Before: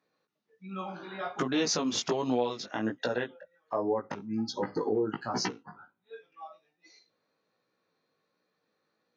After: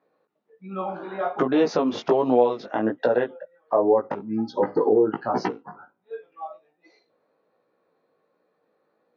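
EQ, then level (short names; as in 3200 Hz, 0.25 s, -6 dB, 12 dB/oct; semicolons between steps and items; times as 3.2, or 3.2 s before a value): air absorption 210 m; bell 570 Hz +12.5 dB 2.5 oct; 0.0 dB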